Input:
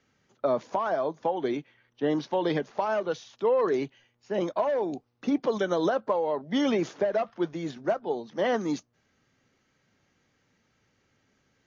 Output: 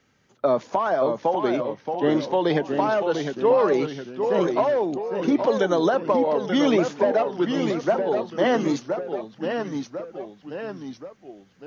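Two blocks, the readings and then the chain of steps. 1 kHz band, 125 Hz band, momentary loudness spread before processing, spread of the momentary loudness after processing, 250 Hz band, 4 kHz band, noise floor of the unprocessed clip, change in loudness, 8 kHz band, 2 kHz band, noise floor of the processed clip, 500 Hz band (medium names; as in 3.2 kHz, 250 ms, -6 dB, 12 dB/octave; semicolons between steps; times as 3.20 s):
+6.0 dB, +7.0 dB, 7 LU, 14 LU, +6.5 dB, +6.0 dB, -72 dBFS, +5.5 dB, no reading, +6.0 dB, -57 dBFS, +6.5 dB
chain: ever faster or slower copies 551 ms, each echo -1 st, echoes 3, each echo -6 dB; trim +5 dB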